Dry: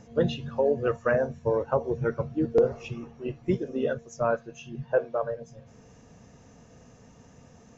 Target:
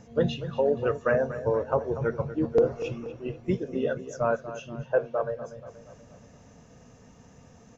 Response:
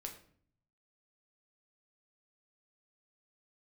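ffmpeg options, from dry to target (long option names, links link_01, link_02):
-filter_complex "[0:a]equalizer=frequency=350:width=7.1:gain=-2.5,asplit=2[link_01][link_02];[link_02]adelay=239,lowpass=frequency=4100:poles=1,volume=-13dB,asplit=2[link_03][link_04];[link_04]adelay=239,lowpass=frequency=4100:poles=1,volume=0.52,asplit=2[link_05][link_06];[link_06]adelay=239,lowpass=frequency=4100:poles=1,volume=0.52,asplit=2[link_07][link_08];[link_08]adelay=239,lowpass=frequency=4100:poles=1,volume=0.52,asplit=2[link_09][link_10];[link_10]adelay=239,lowpass=frequency=4100:poles=1,volume=0.52[link_11];[link_01][link_03][link_05][link_07][link_09][link_11]amix=inputs=6:normalize=0"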